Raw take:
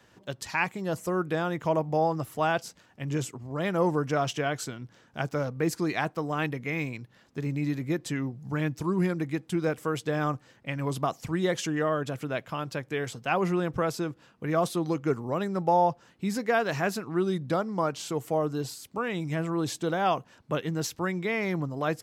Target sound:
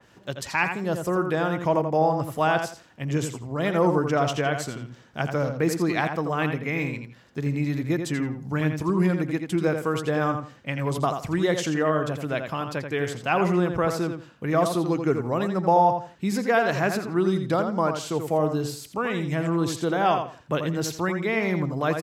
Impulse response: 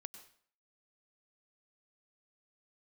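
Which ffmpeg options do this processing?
-filter_complex "[0:a]asplit=2[a][b];[b]adelay=84,lowpass=f=5k:p=1,volume=-6.5dB,asplit=2[c][d];[d]adelay=84,lowpass=f=5k:p=1,volume=0.23,asplit=2[e][f];[f]adelay=84,lowpass=f=5k:p=1,volume=0.23[g];[a][c][e][g]amix=inputs=4:normalize=0,adynamicequalizer=threshold=0.00891:dfrequency=2800:dqfactor=0.7:tfrequency=2800:tqfactor=0.7:attack=5:release=100:ratio=0.375:range=1.5:mode=cutabove:tftype=highshelf,volume=3.5dB"

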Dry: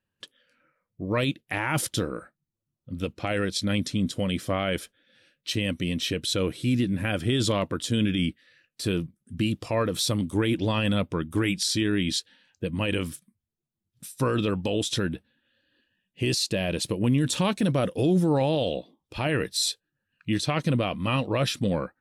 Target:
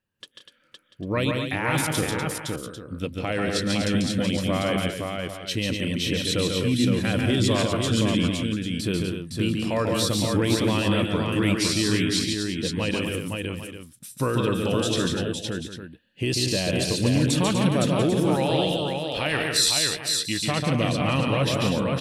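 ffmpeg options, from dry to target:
-filter_complex "[0:a]asettb=1/sr,asplit=3[a][b][c];[a]atrim=end=18.104[d];[b]atrim=start=18.1:end=20.39,asetpts=PTS-STARTPTS,afade=t=in:d=0.004:c=qsin,afade=t=out:st=2.286:d=0.004:c=qsin,tiltshelf=f=810:g=-5.5[e];[c]atrim=start=20.386[f];[d][e]acrossfade=d=0.004:c1=hsin:c2=qsin[g];[g][f]acrossfade=d=0.004:c1=qsin:c2=hsin,aecho=1:1:142|174|246|513|691|797:0.631|0.282|0.398|0.631|0.188|0.224"

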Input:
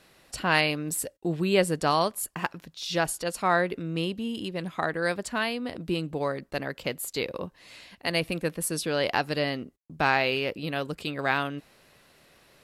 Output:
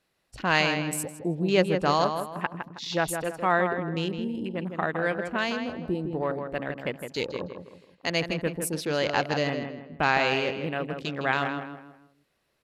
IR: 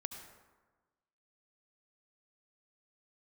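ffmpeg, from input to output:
-filter_complex "[0:a]afwtdn=0.0126,asplit=2[a][b];[b]adelay=160,lowpass=f=2.7k:p=1,volume=-6.5dB,asplit=2[c][d];[d]adelay=160,lowpass=f=2.7k:p=1,volume=0.38,asplit=2[e][f];[f]adelay=160,lowpass=f=2.7k:p=1,volume=0.38,asplit=2[g][h];[h]adelay=160,lowpass=f=2.7k:p=1,volume=0.38[i];[c][e][g][i]amix=inputs=4:normalize=0[j];[a][j]amix=inputs=2:normalize=0"

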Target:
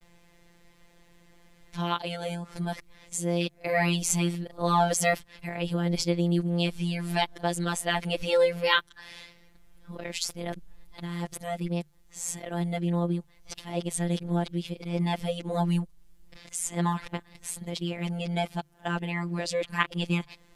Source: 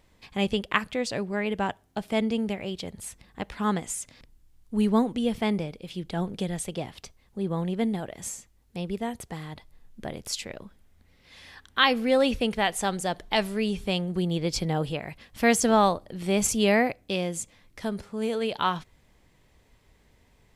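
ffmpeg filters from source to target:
-filter_complex "[0:a]areverse,asplit=2[a][b];[b]acompressor=threshold=-36dB:ratio=6,volume=2dB[c];[a][c]amix=inputs=2:normalize=0,afftfilt=real='hypot(re,im)*cos(PI*b)':imag='0':win_size=1024:overlap=0.75,bandreject=f=50:t=h:w=6,bandreject=f=100:t=h:w=6,bandreject=f=150:t=h:w=6"

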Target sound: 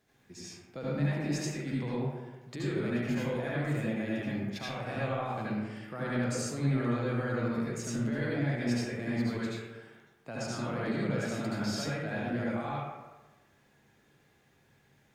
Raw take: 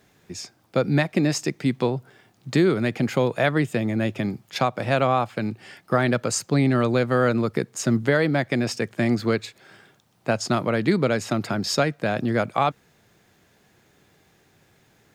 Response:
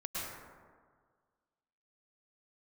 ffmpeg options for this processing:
-filter_complex "[0:a]alimiter=limit=-17.5dB:level=0:latency=1:release=13[a];[1:a]atrim=start_sample=2205,asetrate=66150,aresample=44100[b];[a][b]afir=irnorm=-1:irlink=0,volume=-6dB"

